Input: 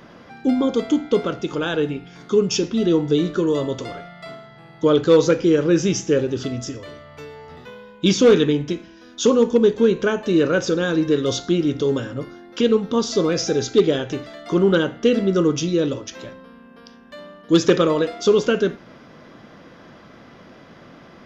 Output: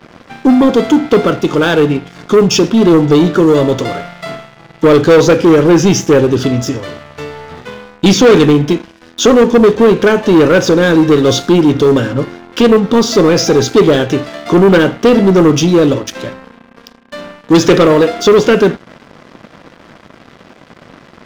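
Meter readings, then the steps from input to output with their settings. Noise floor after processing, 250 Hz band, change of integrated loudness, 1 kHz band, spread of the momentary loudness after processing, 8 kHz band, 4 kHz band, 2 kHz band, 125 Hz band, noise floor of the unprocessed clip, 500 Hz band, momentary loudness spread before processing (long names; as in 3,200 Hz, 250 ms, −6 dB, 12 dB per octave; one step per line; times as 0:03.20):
−42 dBFS, +10.0 dB, +9.5 dB, +13.5 dB, 17 LU, can't be measured, +9.0 dB, +11.0 dB, +11.5 dB, −46 dBFS, +9.0 dB, 17 LU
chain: high-pass filter 65 Hz 24 dB per octave
high-shelf EQ 5,200 Hz −7 dB
leveller curve on the samples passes 3
level +2.5 dB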